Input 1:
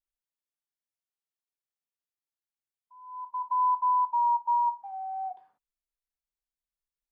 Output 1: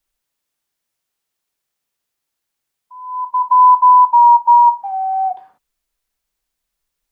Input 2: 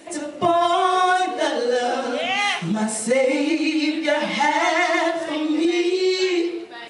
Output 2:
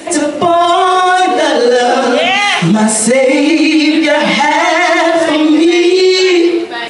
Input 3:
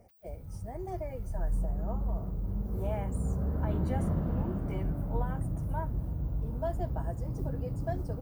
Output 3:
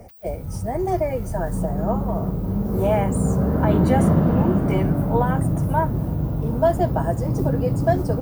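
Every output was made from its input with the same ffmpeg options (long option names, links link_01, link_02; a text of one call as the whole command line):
ffmpeg -i in.wav -filter_complex "[0:a]acrossover=split=110[link_01][link_02];[link_01]acompressor=threshold=-48dB:ratio=5[link_03];[link_03][link_02]amix=inputs=2:normalize=0,alimiter=level_in=17.5dB:limit=-1dB:release=50:level=0:latency=1,volume=-1dB" out.wav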